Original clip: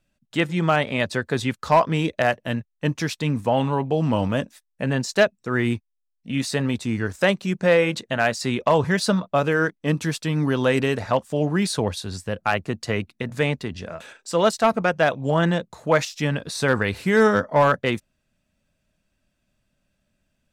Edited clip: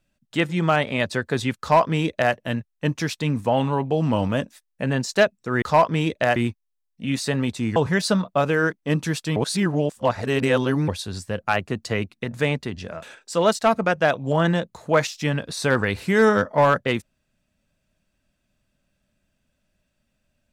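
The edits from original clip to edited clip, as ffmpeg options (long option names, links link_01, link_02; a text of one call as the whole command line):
ffmpeg -i in.wav -filter_complex "[0:a]asplit=6[link_01][link_02][link_03][link_04][link_05][link_06];[link_01]atrim=end=5.622[link_07];[link_02]atrim=start=1.598:end=2.342[link_08];[link_03]atrim=start=5.618:end=7.022[link_09];[link_04]atrim=start=8.738:end=10.342[link_10];[link_05]atrim=start=10.338:end=11.862,asetpts=PTS-STARTPTS,areverse[link_11];[link_06]atrim=start=11.858[link_12];[link_07][link_08]acrossfade=duration=0.004:curve1=hsin:curve2=hsin[link_13];[link_13][link_09]acrossfade=duration=0.004:curve1=hsin:curve2=hsin[link_14];[link_14][link_10]acrossfade=duration=0.004:curve1=hsin:curve2=hsin[link_15];[link_15][link_11]acrossfade=duration=0.004:curve1=hsin:curve2=hsin[link_16];[link_16][link_12]acrossfade=duration=0.004:curve1=hsin:curve2=hsin" out.wav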